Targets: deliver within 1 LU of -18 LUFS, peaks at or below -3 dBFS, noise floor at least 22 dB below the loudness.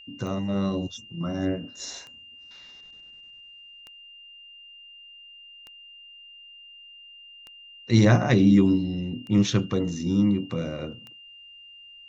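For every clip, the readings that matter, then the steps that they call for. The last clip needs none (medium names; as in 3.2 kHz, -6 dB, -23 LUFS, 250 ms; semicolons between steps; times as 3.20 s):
clicks found 7; steady tone 2.8 kHz; tone level -45 dBFS; loudness -24.0 LUFS; peak level -5.0 dBFS; loudness target -18.0 LUFS
-> de-click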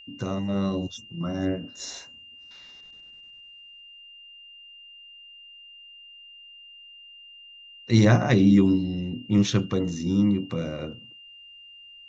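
clicks found 0; steady tone 2.8 kHz; tone level -45 dBFS
-> band-stop 2.8 kHz, Q 30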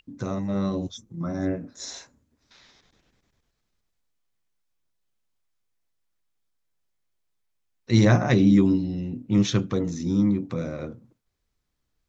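steady tone not found; loudness -23.5 LUFS; peak level -5.0 dBFS; loudness target -18.0 LUFS
-> trim +5.5 dB; peak limiter -3 dBFS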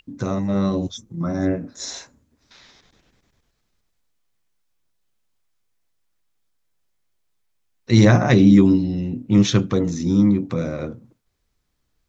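loudness -18.5 LUFS; peak level -3.0 dBFS; noise floor -71 dBFS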